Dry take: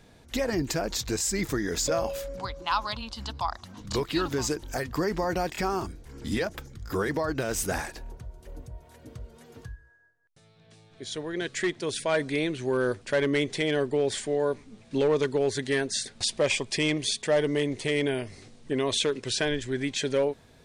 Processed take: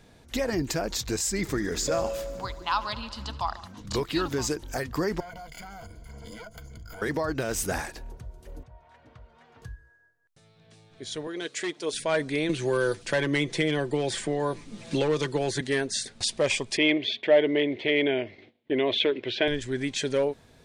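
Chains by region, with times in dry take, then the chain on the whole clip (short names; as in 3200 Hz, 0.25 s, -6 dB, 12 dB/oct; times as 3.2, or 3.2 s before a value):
1.29–3.68 high shelf 8400 Hz -4.5 dB + multi-head echo 72 ms, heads first and second, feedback 69%, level -21 dB
5.2–7.02 minimum comb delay 1.4 ms + ripple EQ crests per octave 1.8, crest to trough 14 dB + compressor 8:1, threshold -39 dBFS
8.63–9.62 LPF 2900 Hz + resonant low shelf 580 Hz -9 dB, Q 1.5
11.27–11.93 HPF 310 Hz + bell 1800 Hz -5.5 dB 0.61 oct + comb 6.6 ms, depth 42%
12.49–15.61 comb 5.9 ms, depth 55% + three-band squash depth 70%
16.77–19.48 speaker cabinet 130–3500 Hz, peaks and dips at 160 Hz -9 dB, 340 Hz +7 dB, 630 Hz +6 dB, 1200 Hz -7 dB, 2200 Hz +7 dB, 3300 Hz +6 dB + expander -45 dBFS
whole clip: dry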